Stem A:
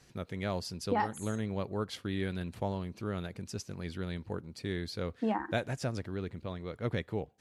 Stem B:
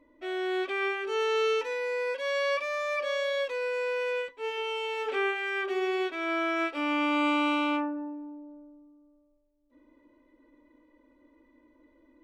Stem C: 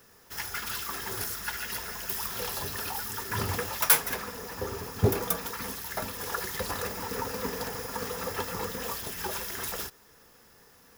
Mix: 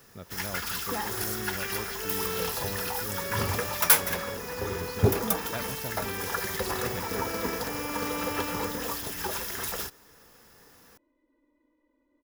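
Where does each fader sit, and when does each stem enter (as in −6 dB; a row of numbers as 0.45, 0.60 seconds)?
−5.0, −9.5, +1.5 decibels; 0.00, 0.90, 0.00 seconds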